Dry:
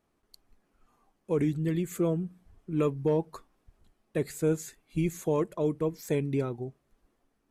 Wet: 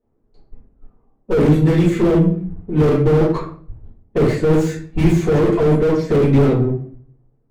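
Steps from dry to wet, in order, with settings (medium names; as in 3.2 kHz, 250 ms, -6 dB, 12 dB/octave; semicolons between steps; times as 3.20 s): gate -60 dBFS, range -11 dB; level-controlled noise filter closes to 750 Hz, open at -23 dBFS; harmonic-percussive split percussive +5 dB; Chebyshev shaper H 4 -23 dB, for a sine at -21.5 dBFS; in parallel at -11 dB: hard clipper -32.5 dBFS, distortion -6 dB; on the sum: simulated room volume 44 m³, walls mixed, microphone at 2 m; slew-rate limiter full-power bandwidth 71 Hz; trim +3 dB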